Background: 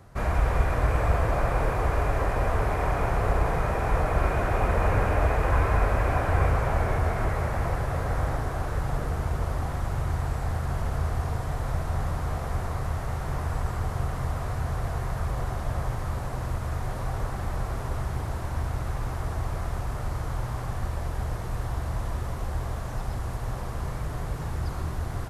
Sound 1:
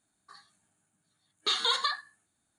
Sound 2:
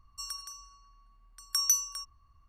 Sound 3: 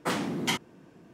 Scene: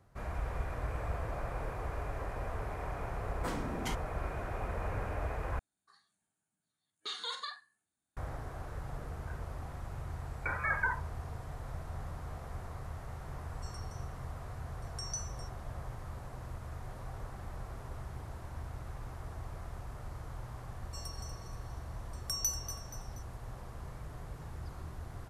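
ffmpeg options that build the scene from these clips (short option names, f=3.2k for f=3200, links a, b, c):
-filter_complex "[1:a]asplit=2[a][b];[2:a]asplit=2[c][d];[0:a]volume=-13.5dB[e];[3:a]equalizer=f=3k:t=o:w=1.6:g=-5.5[f];[a]asplit=2[g][h];[h]adelay=45,volume=-10dB[i];[g][i]amix=inputs=2:normalize=0[j];[b]lowpass=f=2.3k:t=q:w=0.5098,lowpass=f=2.3k:t=q:w=0.6013,lowpass=f=2.3k:t=q:w=0.9,lowpass=f=2.3k:t=q:w=2.563,afreqshift=-2700[k];[c]aresample=22050,aresample=44100[l];[d]aecho=1:1:239|478|717|956:0.266|0.117|0.0515|0.0227[m];[e]asplit=2[n][o];[n]atrim=end=5.594[p];[j]atrim=end=2.58,asetpts=PTS-STARTPTS,volume=-12.5dB[q];[o]atrim=start=8.166[r];[f]atrim=end=1.13,asetpts=PTS-STARTPTS,volume=-9dB,afade=t=in:d=0.004:c=hsin,afade=t=out:st=1.126:d=0.004:c=hsin,adelay=3380[s];[k]atrim=end=2.58,asetpts=PTS-STARTPTS,afade=t=in:d=0.004:c=hsin,afade=t=out:st=2.576:d=0.004:c=hsin,adelay=8990[t];[l]atrim=end=2.48,asetpts=PTS-STARTPTS,volume=-14.5dB,afade=t=in:d=0.004:c=hsin,afade=t=out:st=2.476:d=0.004:c=hsin,adelay=13440[u];[m]atrim=end=2.48,asetpts=PTS-STARTPTS,volume=-8dB,afade=t=in:d=0.004:c=hsin,afade=t=out:st=2.476:d=0.004:c=hsin,adelay=20750[v];[p][q]acrossfade=d=0.004:c1=hsin:c2=hsin[w];[w][r]acrossfade=d=0.004:c1=hsin:c2=hsin[x];[x][s][t][u][v]amix=inputs=5:normalize=0"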